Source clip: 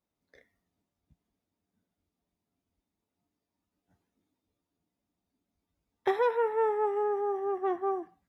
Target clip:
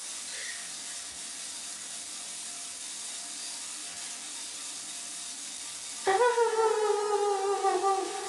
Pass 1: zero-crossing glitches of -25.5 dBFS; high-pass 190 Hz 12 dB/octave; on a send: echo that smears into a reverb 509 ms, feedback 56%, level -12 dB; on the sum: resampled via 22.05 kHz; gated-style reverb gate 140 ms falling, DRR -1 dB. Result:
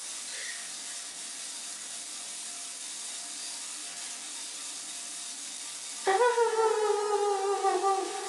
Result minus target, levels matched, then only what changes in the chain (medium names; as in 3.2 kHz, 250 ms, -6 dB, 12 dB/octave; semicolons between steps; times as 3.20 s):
125 Hz band -5.5 dB
change: high-pass 64 Hz 12 dB/octave